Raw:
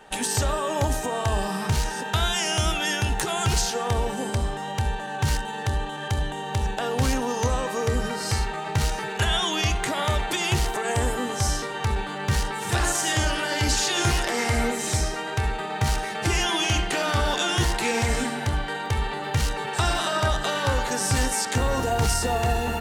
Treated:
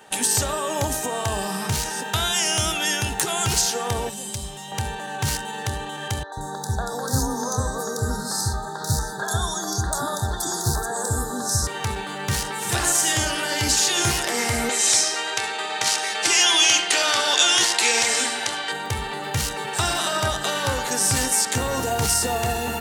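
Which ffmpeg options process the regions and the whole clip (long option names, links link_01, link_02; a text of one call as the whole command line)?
ffmpeg -i in.wav -filter_complex "[0:a]asettb=1/sr,asplit=3[link_01][link_02][link_03];[link_01]atrim=end=4.094[link_04];[link_02]atrim=start=4.09:end=4.72,asetpts=PTS-STARTPTS,afade=type=in:duration=0.004:curve=qsin,afade=type=out:start_time=0.626:duration=0.004:curve=qsin,aecho=1:1:5.4:0.48,atrim=end_sample=27783,acrossover=split=130|3000[link_05][link_06][link_07];[link_06]acompressor=threshold=-43dB:ratio=2.5:attack=3.2:release=140:knee=2.83:detection=peak[link_08];[link_05][link_08][link_07]amix=inputs=3:normalize=0[link_09];[link_03]atrim=start=4.716[link_10];[link_04][link_09]acrossfade=duration=0.004:curve1=hsin:curve2=qsin[link_11];[link_11][link_10]acrossfade=duration=0.004:curve1=qsin:curve2=hsin,asettb=1/sr,asplit=3[link_12][link_13][link_14];[link_12]atrim=end=6.234[link_15];[link_13]atrim=start=6.23:end=11.67,asetpts=PTS-STARTPTS,afade=type=in:duration=0.004:curve=qsin,afade=type=out:start_time=5.436:duration=0.004:curve=qsin,asuperstop=centerf=2500:order=12:qfactor=1.3,lowshelf=frequency=66:gain=9.5,acrossover=split=450|3400[link_16][link_17][link_18];[link_18]adelay=90[link_19];[link_16]adelay=140[link_20];[link_20][link_17][link_19]amix=inputs=3:normalize=0,atrim=end_sample=239904[link_21];[link_14]atrim=start=11.666[link_22];[link_15][link_21]acrossfade=duration=0.004:curve1=hsin:curve2=qsin[link_23];[link_23][link_22]acrossfade=duration=0.004:curve1=qsin:curve2=hsin,asettb=1/sr,asplit=3[link_24][link_25][link_26];[link_24]atrim=end=14.694[link_27];[link_25]atrim=start=14.69:end=18.72,asetpts=PTS-STARTPTS,afade=type=in:duration=0.004:curve=qsin,afade=type=out:start_time=4.026:duration=0.004:curve=qsin,highpass=370,lowpass=6900,highshelf=frequency=2200:gain=10[link_28];[link_26]atrim=start=18.716[link_29];[link_27][link_28]acrossfade=duration=0.004:curve1=hsin:curve2=qsin[link_30];[link_30][link_29]acrossfade=duration=0.004:curve1=qsin:curve2=hsin,highpass=88,highshelf=frequency=5300:gain=10" out.wav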